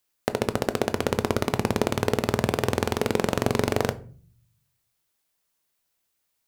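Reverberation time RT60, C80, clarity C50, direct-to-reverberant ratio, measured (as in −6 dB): 0.45 s, 24.0 dB, 19.0 dB, 12.0 dB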